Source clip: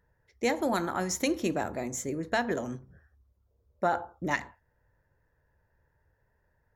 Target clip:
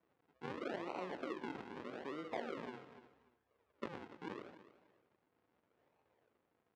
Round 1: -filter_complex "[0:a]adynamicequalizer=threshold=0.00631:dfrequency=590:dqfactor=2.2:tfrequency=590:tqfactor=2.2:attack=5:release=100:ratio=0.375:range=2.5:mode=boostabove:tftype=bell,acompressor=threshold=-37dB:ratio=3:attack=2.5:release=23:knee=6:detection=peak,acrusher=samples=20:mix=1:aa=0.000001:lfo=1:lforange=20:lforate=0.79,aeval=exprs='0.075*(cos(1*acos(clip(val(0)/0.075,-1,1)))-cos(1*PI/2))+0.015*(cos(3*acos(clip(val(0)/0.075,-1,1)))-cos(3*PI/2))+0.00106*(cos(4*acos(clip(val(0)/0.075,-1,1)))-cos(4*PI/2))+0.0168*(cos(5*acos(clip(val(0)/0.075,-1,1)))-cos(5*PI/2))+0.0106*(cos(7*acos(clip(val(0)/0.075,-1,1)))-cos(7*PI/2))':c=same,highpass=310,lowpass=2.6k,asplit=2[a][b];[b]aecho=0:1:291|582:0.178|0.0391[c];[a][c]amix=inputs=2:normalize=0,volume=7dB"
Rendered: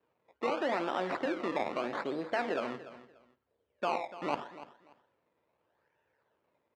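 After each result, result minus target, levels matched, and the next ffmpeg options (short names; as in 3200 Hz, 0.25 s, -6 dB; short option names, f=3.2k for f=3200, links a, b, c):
decimation with a swept rate: distortion -13 dB; compressor: peak gain reduction -7 dB
-filter_complex "[0:a]adynamicequalizer=threshold=0.00631:dfrequency=590:dqfactor=2.2:tfrequency=590:tqfactor=2.2:attack=5:release=100:ratio=0.375:range=2.5:mode=boostabove:tftype=bell,acompressor=threshold=-37dB:ratio=3:attack=2.5:release=23:knee=6:detection=peak,acrusher=samples=51:mix=1:aa=0.000001:lfo=1:lforange=51:lforate=0.79,aeval=exprs='0.075*(cos(1*acos(clip(val(0)/0.075,-1,1)))-cos(1*PI/2))+0.015*(cos(3*acos(clip(val(0)/0.075,-1,1)))-cos(3*PI/2))+0.00106*(cos(4*acos(clip(val(0)/0.075,-1,1)))-cos(4*PI/2))+0.0168*(cos(5*acos(clip(val(0)/0.075,-1,1)))-cos(5*PI/2))+0.0106*(cos(7*acos(clip(val(0)/0.075,-1,1)))-cos(7*PI/2))':c=same,highpass=310,lowpass=2.6k,asplit=2[a][b];[b]aecho=0:1:291|582:0.178|0.0391[c];[a][c]amix=inputs=2:normalize=0,volume=7dB"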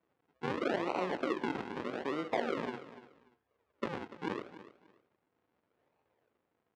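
compressor: peak gain reduction -7 dB
-filter_complex "[0:a]adynamicequalizer=threshold=0.00631:dfrequency=590:dqfactor=2.2:tfrequency=590:tqfactor=2.2:attack=5:release=100:ratio=0.375:range=2.5:mode=boostabove:tftype=bell,acompressor=threshold=-47.5dB:ratio=3:attack=2.5:release=23:knee=6:detection=peak,acrusher=samples=51:mix=1:aa=0.000001:lfo=1:lforange=51:lforate=0.79,aeval=exprs='0.075*(cos(1*acos(clip(val(0)/0.075,-1,1)))-cos(1*PI/2))+0.015*(cos(3*acos(clip(val(0)/0.075,-1,1)))-cos(3*PI/2))+0.00106*(cos(4*acos(clip(val(0)/0.075,-1,1)))-cos(4*PI/2))+0.0168*(cos(5*acos(clip(val(0)/0.075,-1,1)))-cos(5*PI/2))+0.0106*(cos(7*acos(clip(val(0)/0.075,-1,1)))-cos(7*PI/2))':c=same,highpass=310,lowpass=2.6k,asplit=2[a][b];[b]aecho=0:1:291|582:0.178|0.0391[c];[a][c]amix=inputs=2:normalize=0,volume=7dB"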